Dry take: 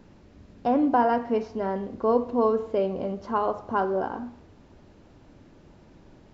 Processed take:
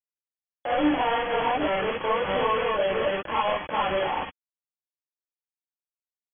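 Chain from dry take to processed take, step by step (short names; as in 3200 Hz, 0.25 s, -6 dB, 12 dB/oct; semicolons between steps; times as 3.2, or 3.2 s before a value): 0.84–3.01 reverse delay 0.384 s, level -3 dB; HPF 390 Hz 24 dB/oct; high shelf 2100 Hz -11.5 dB; comb 3.6 ms, depth 43%; compressor 12:1, threshold -32 dBFS, peak gain reduction 14 dB; companded quantiser 2-bit; brick-wall FIR low-pass 3400 Hz; non-linear reverb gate 80 ms rising, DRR -6.5 dB; gain -2.5 dB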